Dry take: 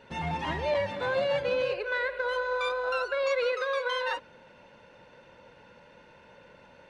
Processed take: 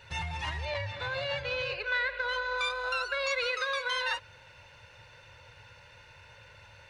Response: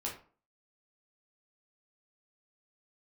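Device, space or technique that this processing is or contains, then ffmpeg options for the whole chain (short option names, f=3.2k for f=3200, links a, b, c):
car stereo with a boomy subwoofer: -filter_complex "[0:a]lowshelf=f=150:t=q:w=3:g=13,alimiter=limit=-22dB:level=0:latency=1:release=257,bandreject=f=3.2k:w=21,asettb=1/sr,asplit=3[a][b][c];[a]atrim=end=0.654[d];[b]atrim=start=0.65:end=2.58,asetpts=PTS-STARTPTS,afade=t=in:d=0.004:c=qsin,afade=t=out:st=1.926:d=0.004:c=qsin,lowpass=5.5k[e];[c]atrim=start=2.576[f];[d][e]acrossfade=d=0.004:c1=hsin:c2=qsin[g];[g][f]acrossfade=d=0.004:c1=qsin:c2=hsin,tiltshelf=f=1.1k:g=-8.5"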